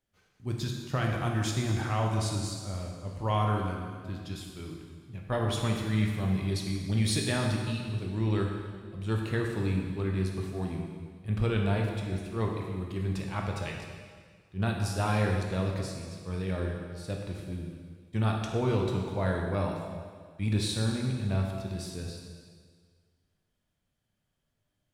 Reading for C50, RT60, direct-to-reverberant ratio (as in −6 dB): 2.5 dB, 1.8 s, 0.0 dB